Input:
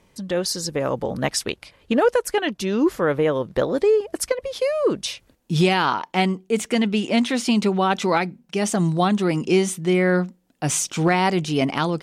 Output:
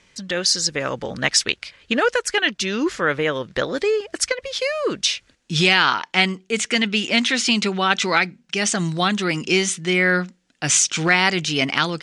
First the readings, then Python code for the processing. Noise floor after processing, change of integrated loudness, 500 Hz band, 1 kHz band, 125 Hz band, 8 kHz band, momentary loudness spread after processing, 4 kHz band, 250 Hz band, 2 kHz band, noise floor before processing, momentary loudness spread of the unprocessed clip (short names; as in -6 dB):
-61 dBFS, +2.0 dB, -3.0 dB, -0.5 dB, -3.0 dB, +6.5 dB, 8 LU, +8.5 dB, -3.0 dB, +8.0 dB, -61 dBFS, 7 LU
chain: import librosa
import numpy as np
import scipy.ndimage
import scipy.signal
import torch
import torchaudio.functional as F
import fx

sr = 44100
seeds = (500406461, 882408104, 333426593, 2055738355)

y = scipy.signal.sosfilt(scipy.signal.butter(16, 11000.0, 'lowpass', fs=sr, output='sos'), x)
y = fx.band_shelf(y, sr, hz=3200.0, db=11.5, octaves=2.8)
y = y * 10.0 ** (-3.0 / 20.0)